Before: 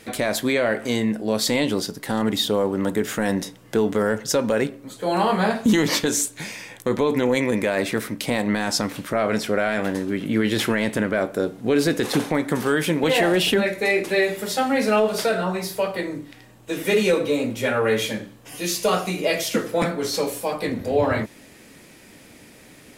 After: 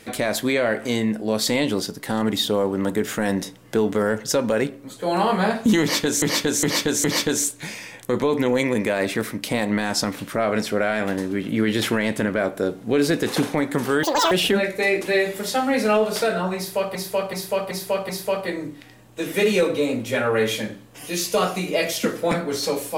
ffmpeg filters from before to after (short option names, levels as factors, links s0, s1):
-filter_complex "[0:a]asplit=10[s0][s1][s2][s3][s4][s5][s6][s7][s8][s9];[s0]atrim=end=6.222[s10];[s1]atrim=start=5.808:end=6.222[s11];[s2]atrim=start=5.808:end=6.222[s12];[s3]atrim=start=5.808:end=12.804[s13];[s4]atrim=start=12.8:end=13.34,asetpts=PTS-STARTPTS,asetrate=84231,aresample=44100,atrim=end_sample=12468,asetpts=PTS-STARTPTS[s14];[s5]atrim=start=13.336:end=15.982[s15];[s6]atrim=start=15.598:end=15.982[s16];[s7]atrim=start=15.598:end=15.982[s17];[s8]atrim=start=15.598:end=15.982[s18];[s9]atrim=start=15.598[s19];[s10][s11]acrossfade=d=0.004:c1=hsin:c2=hsin[s20];[s20][s12]acrossfade=d=0.004:c1=hsin:c2=hsin[s21];[s21][s13]acrossfade=d=0.004:c1=hsin:c2=hsin[s22];[s22][s14]acrossfade=d=0.004:c1=hsin:c2=hsin[s23];[s23][s15]acrossfade=d=0.004:c1=hsin:c2=hsin[s24];[s24][s16]acrossfade=d=0.004:c1=hsin:c2=hsin[s25];[s25][s17]acrossfade=d=0.004:c1=hsin:c2=hsin[s26];[s26][s18]acrossfade=d=0.004:c1=hsin:c2=hsin[s27];[s27][s19]acrossfade=d=0.004:c1=hsin:c2=hsin"